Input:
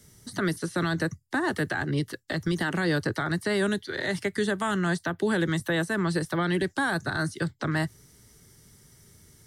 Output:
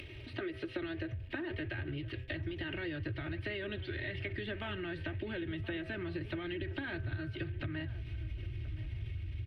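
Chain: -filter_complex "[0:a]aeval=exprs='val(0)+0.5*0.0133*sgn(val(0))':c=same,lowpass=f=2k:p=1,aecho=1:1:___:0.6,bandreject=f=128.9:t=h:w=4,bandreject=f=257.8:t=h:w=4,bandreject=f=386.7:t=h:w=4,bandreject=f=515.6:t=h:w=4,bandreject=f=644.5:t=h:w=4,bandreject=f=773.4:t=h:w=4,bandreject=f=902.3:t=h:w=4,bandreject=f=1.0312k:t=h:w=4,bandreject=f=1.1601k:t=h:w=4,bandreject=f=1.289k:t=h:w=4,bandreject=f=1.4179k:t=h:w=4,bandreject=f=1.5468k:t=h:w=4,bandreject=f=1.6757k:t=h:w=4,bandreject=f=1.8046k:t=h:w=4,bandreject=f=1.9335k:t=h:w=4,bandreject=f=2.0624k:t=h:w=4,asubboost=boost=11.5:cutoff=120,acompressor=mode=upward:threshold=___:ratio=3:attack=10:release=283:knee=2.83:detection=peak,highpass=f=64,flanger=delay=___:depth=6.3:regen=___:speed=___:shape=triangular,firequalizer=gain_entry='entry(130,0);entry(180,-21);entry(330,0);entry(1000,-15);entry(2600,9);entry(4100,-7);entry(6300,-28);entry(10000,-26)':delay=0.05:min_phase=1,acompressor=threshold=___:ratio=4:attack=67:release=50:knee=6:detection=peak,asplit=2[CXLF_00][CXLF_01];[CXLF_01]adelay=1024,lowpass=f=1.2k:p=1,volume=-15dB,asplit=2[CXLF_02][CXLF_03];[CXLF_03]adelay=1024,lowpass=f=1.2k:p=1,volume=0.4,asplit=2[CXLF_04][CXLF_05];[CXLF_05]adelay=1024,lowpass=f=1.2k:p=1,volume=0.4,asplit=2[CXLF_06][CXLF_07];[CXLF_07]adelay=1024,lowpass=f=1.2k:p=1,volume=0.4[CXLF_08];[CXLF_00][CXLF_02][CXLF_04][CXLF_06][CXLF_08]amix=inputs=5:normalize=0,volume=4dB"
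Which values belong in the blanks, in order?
3.2, -43dB, 0.3, 84, 1.7, -48dB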